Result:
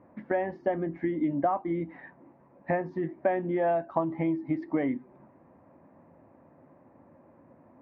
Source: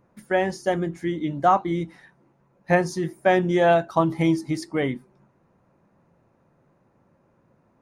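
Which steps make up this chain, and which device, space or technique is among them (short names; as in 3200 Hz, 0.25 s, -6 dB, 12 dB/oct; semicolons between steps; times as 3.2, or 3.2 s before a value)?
bass amplifier (compressor 5:1, threshold -33 dBFS, peak gain reduction 17.5 dB; speaker cabinet 88–2000 Hz, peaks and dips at 130 Hz -8 dB, 190 Hz -6 dB, 270 Hz +6 dB, 420 Hz -5 dB, 620 Hz +3 dB, 1400 Hz -9 dB); gain +7 dB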